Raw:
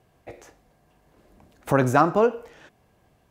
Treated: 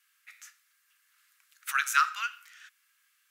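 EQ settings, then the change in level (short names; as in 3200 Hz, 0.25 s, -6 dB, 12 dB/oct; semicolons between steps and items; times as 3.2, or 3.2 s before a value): high shelf 5600 Hz +7.5 dB; dynamic EQ 3200 Hz, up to +7 dB, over -43 dBFS, Q 0.98; Chebyshev high-pass 1300 Hz, order 5; 0.0 dB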